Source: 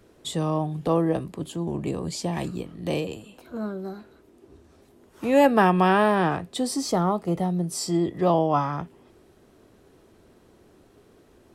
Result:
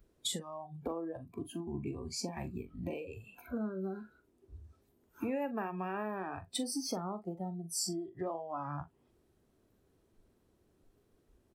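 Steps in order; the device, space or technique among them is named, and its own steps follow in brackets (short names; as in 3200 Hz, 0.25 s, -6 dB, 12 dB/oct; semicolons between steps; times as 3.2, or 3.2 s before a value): ASMR close-microphone chain (low shelf 190 Hz +8 dB; compressor 8:1, threshold -34 dBFS, peak gain reduction 22 dB; high shelf 6300 Hz +6.5 dB); spectral noise reduction 19 dB; doubler 42 ms -12.5 dB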